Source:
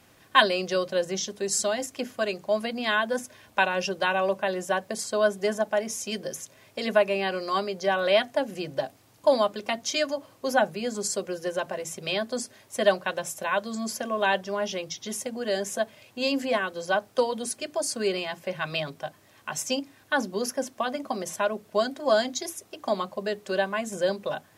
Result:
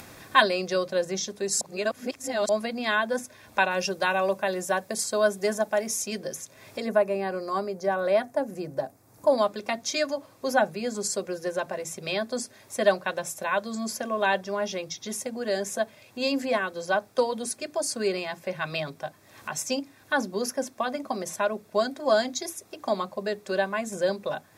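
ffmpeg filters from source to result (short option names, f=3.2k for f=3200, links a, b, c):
-filter_complex "[0:a]asettb=1/sr,asplit=3[a][b][c];[a]atrim=end=3.714[d];[b]atrim=start=3.71:end=6.06,asetpts=PTS-STARTPTS,afade=t=in:d=0.004:c=qsin,afade=t=out:st=2.346:d=0.004:c=qsin,highshelf=f=6.4k:g=7.5[e];[c]atrim=start=6.056[f];[d][e]acrossfade=d=0.004:c1=hsin:c2=qsin[g];[g][f]acrossfade=d=0.004:c1=qsin:c2=hsin,asettb=1/sr,asplit=3[h][i][j];[h]atrim=end=6.804[k];[i]atrim=start=6.8:end=9.38,asetpts=PTS-STARTPTS,afade=t=in:d=0.004:c=qsin,afade=t=out:st=2.576:d=0.004:c=qsin,equalizer=f=3.2k:w=0.83:g=-12[l];[j]atrim=start=9.376[m];[k][l]acrossfade=d=0.004:c1=hsin:c2=qsin[n];[n][m]acrossfade=d=0.004:c1=qsin:c2=hsin,asplit=3[o][p][q];[o]atrim=end=1.612[r];[p]atrim=start=1.608:end=2.492,asetpts=PTS-STARTPTS,areverse[s];[q]atrim=start=2.488[t];[r][s]acrossfade=d=0.004:c1=hsin:c2=hsin[u];[u][t]acrossfade=d=0.004:c1=hsin:c2=hsin,bandreject=f=3k:w=7.2,acompressor=mode=upward:threshold=-36dB:ratio=2.5"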